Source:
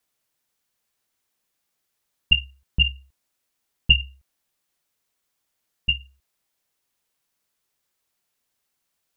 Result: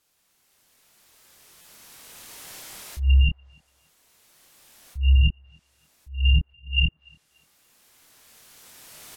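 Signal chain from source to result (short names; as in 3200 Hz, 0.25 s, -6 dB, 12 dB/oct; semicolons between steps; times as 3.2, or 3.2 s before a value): whole clip reversed; recorder AGC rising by 12 dB/s; treble ducked by the level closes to 1100 Hz, closed at -17.5 dBFS; spectral gate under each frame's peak -25 dB strong; limiter -18 dBFS, peak gain reduction 7.5 dB; doubler 26 ms -6 dB; narrowing echo 0.289 s, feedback 73%, band-pass 710 Hz, level -20 dB; stuck buffer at 1.61, samples 256, times 5; gain +6.5 dB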